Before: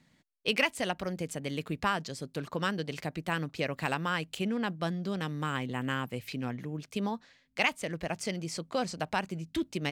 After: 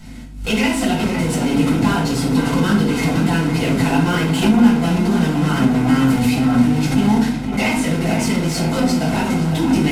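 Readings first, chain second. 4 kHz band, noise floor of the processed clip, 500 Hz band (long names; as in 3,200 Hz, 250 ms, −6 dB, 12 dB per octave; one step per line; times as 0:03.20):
+11.0 dB, −24 dBFS, +12.5 dB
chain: linear delta modulator 64 kbit/s, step −33 dBFS
noise gate with hold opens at −29 dBFS
parametric band 250 Hz +14 dB 0.25 octaves
in parallel at −2 dB: downward compressor, threshold −39 dBFS, peak gain reduction 17.5 dB
on the sum: soft clipping −26 dBFS, distortion −10 dB
notch comb filter 580 Hz
mains hum 50 Hz, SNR 22 dB
tape delay 510 ms, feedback 61%, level −5 dB, low-pass 1,900 Hz
rectangular room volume 640 cubic metres, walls furnished, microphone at 7.3 metres
background raised ahead of every attack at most 95 dB per second
level +3.5 dB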